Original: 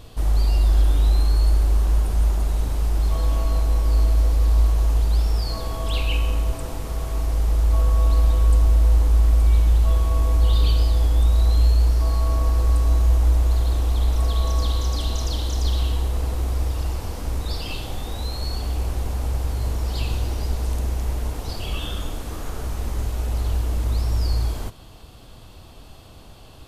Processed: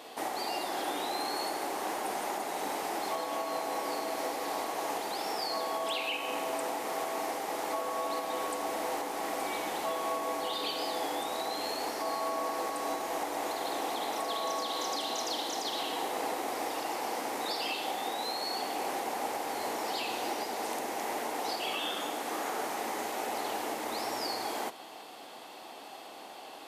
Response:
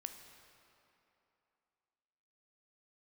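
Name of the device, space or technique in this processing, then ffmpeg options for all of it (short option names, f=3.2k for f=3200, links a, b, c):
laptop speaker: -af "highpass=f=280:w=0.5412,highpass=f=280:w=1.3066,equalizer=f=800:t=o:w=0.5:g=9.5,equalizer=f=2k:t=o:w=0.57:g=7,alimiter=limit=-23.5dB:level=0:latency=1:release=276"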